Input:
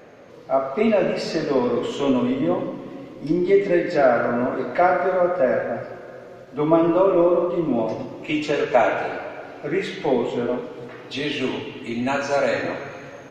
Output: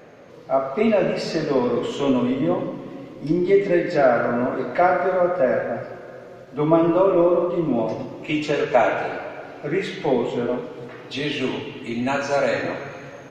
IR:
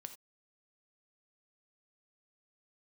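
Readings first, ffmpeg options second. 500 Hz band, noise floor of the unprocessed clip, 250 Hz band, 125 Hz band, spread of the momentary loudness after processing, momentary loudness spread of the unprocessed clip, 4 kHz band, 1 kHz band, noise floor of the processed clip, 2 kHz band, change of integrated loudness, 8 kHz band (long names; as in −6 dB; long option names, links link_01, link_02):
0.0 dB, −41 dBFS, 0.0 dB, +2.5 dB, 15 LU, 16 LU, 0.0 dB, 0.0 dB, −41 dBFS, 0.0 dB, 0.0 dB, can't be measured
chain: -af "equalizer=frequency=150:width=4.5:gain=4"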